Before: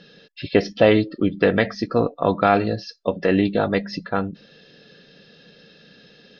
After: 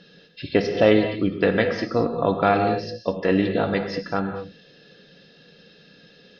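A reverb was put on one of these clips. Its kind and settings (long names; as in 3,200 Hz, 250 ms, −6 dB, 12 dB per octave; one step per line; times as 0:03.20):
reverb whose tail is shaped and stops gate 250 ms flat, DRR 5.5 dB
level −2.5 dB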